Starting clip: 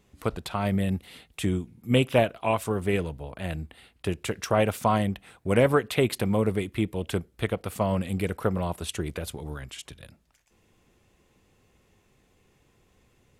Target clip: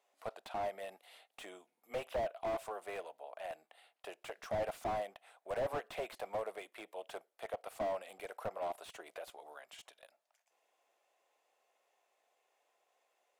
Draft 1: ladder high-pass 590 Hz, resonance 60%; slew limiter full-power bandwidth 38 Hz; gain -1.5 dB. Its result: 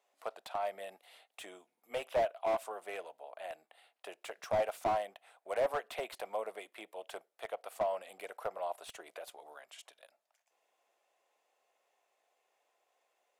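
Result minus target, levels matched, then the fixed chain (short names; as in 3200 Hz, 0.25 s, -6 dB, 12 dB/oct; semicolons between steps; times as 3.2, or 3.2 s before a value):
slew limiter: distortion -8 dB
ladder high-pass 590 Hz, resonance 60%; slew limiter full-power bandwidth 17.5 Hz; gain -1.5 dB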